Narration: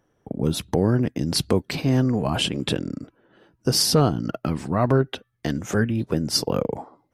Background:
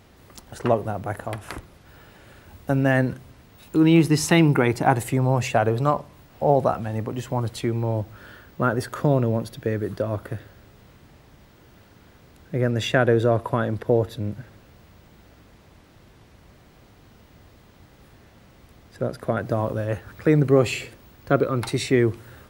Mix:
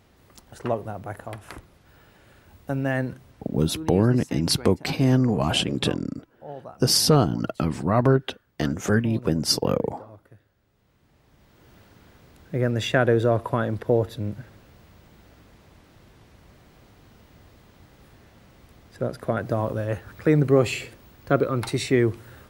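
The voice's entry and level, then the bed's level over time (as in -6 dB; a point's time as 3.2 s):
3.15 s, +0.5 dB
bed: 3.58 s -5.5 dB
3.86 s -20 dB
10.54 s -20 dB
11.71 s -1 dB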